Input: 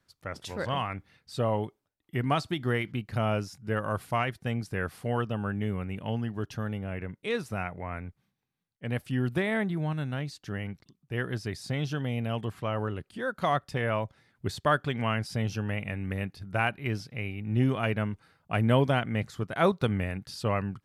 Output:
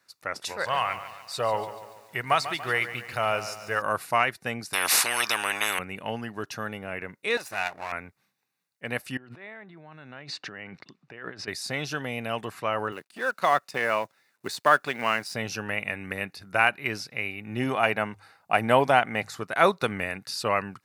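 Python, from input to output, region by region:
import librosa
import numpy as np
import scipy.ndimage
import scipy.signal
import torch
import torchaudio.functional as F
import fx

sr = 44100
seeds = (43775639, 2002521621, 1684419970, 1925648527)

y = fx.chain(x, sr, fx.peak_eq(hz=260.0, db=-11.0, octaves=0.93),
    fx.echo_crushed(ms=143, feedback_pct=55, bits=9, wet_db=-12), at=(0.52, 3.82))
y = fx.chain(y, sr, fx.high_shelf(hz=8400.0, db=-7.5),
    fx.spectral_comp(ratio=10.0), at=(4.73, 5.79))
y = fx.chain(y, sr, fx.lower_of_two(delay_ms=1.2),
    fx.low_shelf(hz=290.0, db=-7.5), at=(7.37, 7.92))
y = fx.chain(y, sr, fx.over_compress(threshold_db=-42.0, ratio=-1.0),
    fx.bandpass_edges(low_hz=100.0, high_hz=3100.0), at=(9.17, 11.48))
y = fx.chain(y, sr, fx.law_mismatch(coded='A'),
    fx.highpass(hz=150.0, slope=12), at=(12.92, 15.35))
y = fx.chain(y, sr, fx.peak_eq(hz=780.0, db=7.5, octaves=0.44),
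    fx.hum_notches(base_hz=50, count=3), at=(17.64, 19.37))
y = fx.highpass(y, sr, hz=920.0, slope=6)
y = fx.notch(y, sr, hz=3200.0, q=6.0)
y = F.gain(torch.from_numpy(y), 9.0).numpy()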